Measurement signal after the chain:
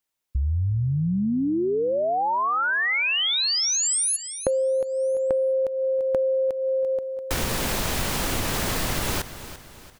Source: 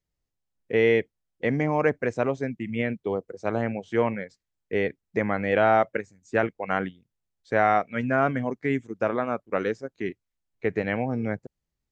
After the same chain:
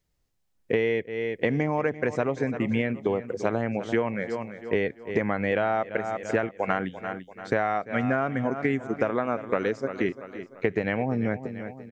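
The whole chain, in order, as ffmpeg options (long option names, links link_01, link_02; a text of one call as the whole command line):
ffmpeg -i in.wav -af "aecho=1:1:341|682|1023|1364:0.15|0.0643|0.0277|0.0119,acompressor=threshold=-29dB:ratio=12,volume=8dB" out.wav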